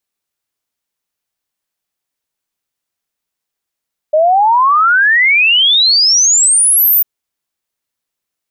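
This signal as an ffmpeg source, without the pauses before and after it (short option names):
-f lavfi -i "aevalsrc='0.473*clip(min(t,2.9-t)/0.01,0,1)*sin(2*PI*600*2.9/log(15000/600)*(exp(log(15000/600)*t/2.9)-1))':d=2.9:s=44100"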